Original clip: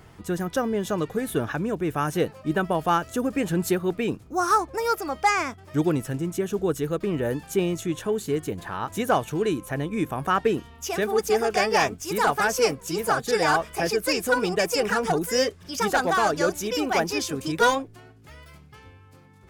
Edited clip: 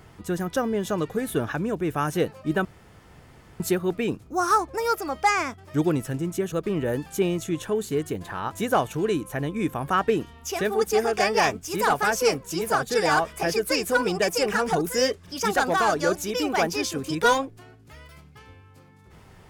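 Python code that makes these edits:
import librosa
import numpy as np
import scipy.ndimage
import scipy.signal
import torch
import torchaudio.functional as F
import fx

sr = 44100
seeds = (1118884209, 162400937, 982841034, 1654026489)

y = fx.edit(x, sr, fx.room_tone_fill(start_s=2.65, length_s=0.95),
    fx.cut(start_s=6.52, length_s=0.37), tone=tone)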